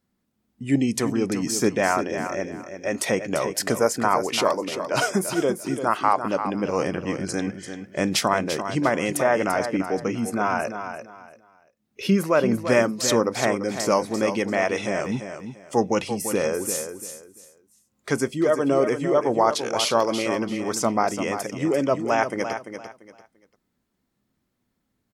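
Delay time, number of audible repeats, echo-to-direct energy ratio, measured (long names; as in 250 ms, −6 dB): 342 ms, 3, −8.5 dB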